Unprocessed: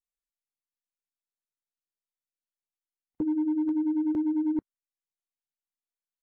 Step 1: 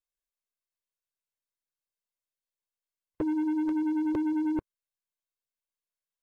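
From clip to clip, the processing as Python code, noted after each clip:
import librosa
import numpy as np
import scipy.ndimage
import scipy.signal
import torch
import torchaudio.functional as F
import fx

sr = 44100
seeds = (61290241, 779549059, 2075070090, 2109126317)

y = x + 0.83 * np.pad(x, (int(1.9 * sr / 1000.0), 0))[:len(x)]
y = fx.leveller(y, sr, passes=2)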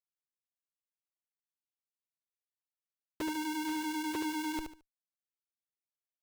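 y = fx.schmitt(x, sr, flips_db=-33.0)
y = fx.echo_feedback(y, sr, ms=73, feedback_pct=25, wet_db=-6.0)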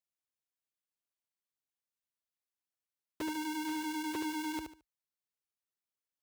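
y = scipy.signal.sosfilt(scipy.signal.butter(4, 46.0, 'highpass', fs=sr, output='sos'), x)
y = F.gain(torch.from_numpy(y), -1.5).numpy()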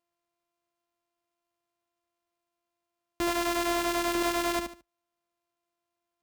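y = np.r_[np.sort(x[:len(x) // 128 * 128].reshape(-1, 128), axis=1).ravel(), x[len(x) // 128 * 128:]]
y = F.gain(torch.from_numpy(y), 8.5).numpy()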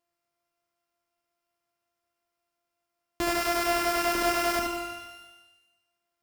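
y = fx.rev_shimmer(x, sr, seeds[0], rt60_s=1.1, semitones=12, shimmer_db=-8, drr_db=3.5)
y = F.gain(torch.from_numpy(y), 1.5).numpy()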